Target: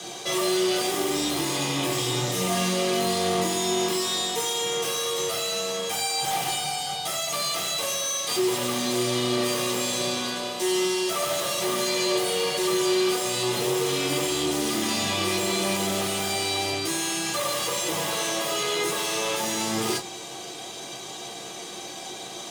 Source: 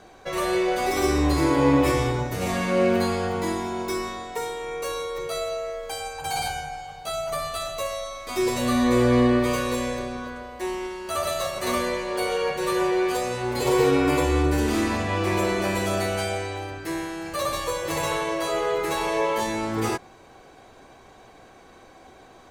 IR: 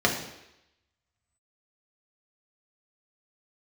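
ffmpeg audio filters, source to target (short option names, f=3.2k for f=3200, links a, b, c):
-filter_complex "[0:a]acrossover=split=3600[a][b];[a]alimiter=limit=-17.5dB:level=0:latency=1[c];[b]aeval=exprs='0.0668*sin(PI/2*7.08*val(0)/0.0668)':c=same[d];[c][d]amix=inputs=2:normalize=0,aeval=exprs='(tanh(50.1*val(0)+0.65)-tanh(0.65))/50.1':c=same[e];[1:a]atrim=start_sample=2205,atrim=end_sample=3528,asetrate=74970,aresample=44100[f];[e][f]afir=irnorm=-1:irlink=0"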